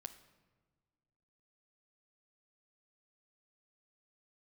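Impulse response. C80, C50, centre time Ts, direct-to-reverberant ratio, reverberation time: 14.5 dB, 12.5 dB, 8 ms, 8.0 dB, 1.4 s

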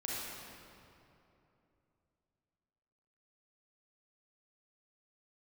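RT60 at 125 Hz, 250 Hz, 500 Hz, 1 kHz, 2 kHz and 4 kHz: 3.5, 3.3, 3.1, 2.7, 2.2, 1.8 seconds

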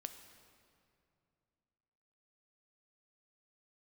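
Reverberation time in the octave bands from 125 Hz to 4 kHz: 3.1, 3.0, 2.7, 2.5, 2.1, 1.7 seconds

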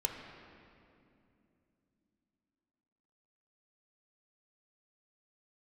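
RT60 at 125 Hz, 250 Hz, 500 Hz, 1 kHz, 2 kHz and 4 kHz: 3.9, 4.4, 3.0, 2.4, 2.2, 1.8 seconds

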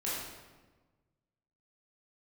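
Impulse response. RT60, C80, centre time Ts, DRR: 1.3 s, 2.0 dB, 85 ms, −8.5 dB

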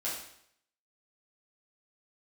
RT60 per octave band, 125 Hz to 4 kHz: 0.70, 0.65, 0.70, 0.70, 0.65, 0.65 seconds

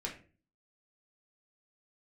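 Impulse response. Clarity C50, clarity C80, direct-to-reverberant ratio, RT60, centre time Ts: 9.0 dB, 14.0 dB, −2.5 dB, 0.40 s, 20 ms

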